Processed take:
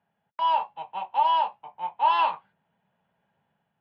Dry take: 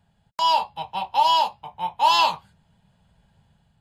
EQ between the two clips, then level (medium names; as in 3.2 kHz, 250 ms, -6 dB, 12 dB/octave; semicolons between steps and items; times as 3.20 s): dynamic bell 1.5 kHz, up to +5 dB, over -31 dBFS, Q 1.3; high-pass 280 Hz 12 dB/octave; low-pass 2.6 kHz 24 dB/octave; -5.0 dB